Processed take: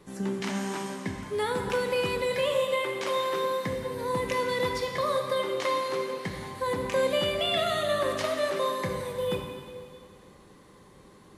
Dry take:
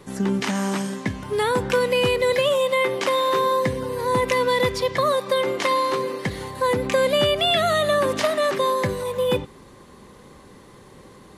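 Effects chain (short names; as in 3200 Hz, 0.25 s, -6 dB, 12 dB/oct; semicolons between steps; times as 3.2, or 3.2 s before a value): plate-style reverb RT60 2 s, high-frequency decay 1×, DRR 2.5 dB; gain -9 dB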